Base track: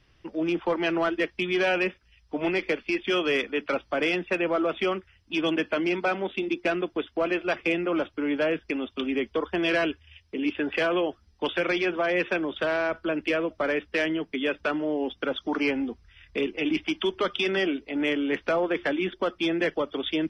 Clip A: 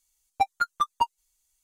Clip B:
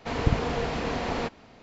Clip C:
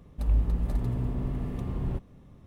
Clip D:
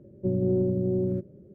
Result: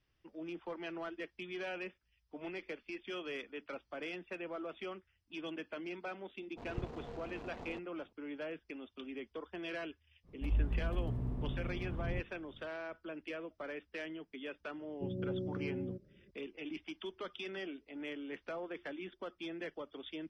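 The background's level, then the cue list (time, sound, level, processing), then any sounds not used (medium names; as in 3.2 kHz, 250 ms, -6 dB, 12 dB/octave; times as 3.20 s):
base track -17.5 dB
6.51 s: add B -17.5 dB + local Wiener filter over 25 samples
10.23 s: add C -8 dB, fades 0.05 s + treble shelf 2.2 kHz -8 dB
14.77 s: add D -14 dB
not used: A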